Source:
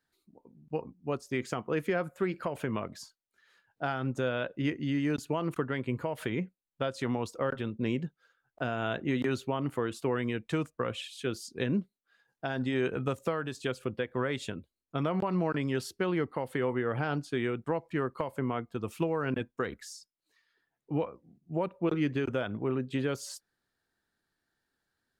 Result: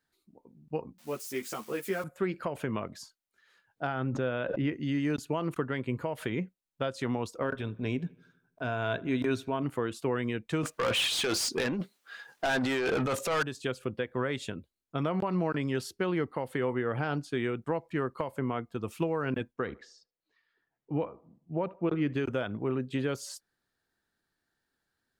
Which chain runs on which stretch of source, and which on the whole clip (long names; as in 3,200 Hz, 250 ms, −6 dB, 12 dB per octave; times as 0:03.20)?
0:00.98–0:02.04: spike at every zero crossing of −34 dBFS + parametric band 90 Hz −12.5 dB 1.5 octaves + string-ensemble chorus
0:03.87–0:04.73: high-frequency loss of the air 230 metres + background raised ahead of every attack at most 31 dB per second
0:07.42–0:09.63: EQ curve with evenly spaced ripples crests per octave 1.6, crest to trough 7 dB + transient designer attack −5 dB, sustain −1 dB + feedback echo with a low-pass in the loop 81 ms, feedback 56%, low-pass 3,300 Hz, level −23 dB
0:10.63–0:13.43: compressor whose output falls as the input rises −35 dBFS + mid-hump overdrive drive 25 dB, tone 7,000 Hz, clips at −20.5 dBFS
0:19.53–0:22.13: high-frequency loss of the air 190 metres + feedback echo with a band-pass in the loop 76 ms, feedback 40%, band-pass 690 Hz, level −18 dB
whole clip: no processing